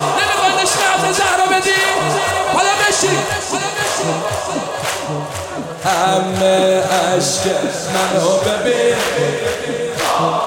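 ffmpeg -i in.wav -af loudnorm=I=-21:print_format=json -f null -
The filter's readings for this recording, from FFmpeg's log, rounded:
"input_i" : "-15.5",
"input_tp" : "-3.2",
"input_lra" : "3.2",
"input_thresh" : "-25.5",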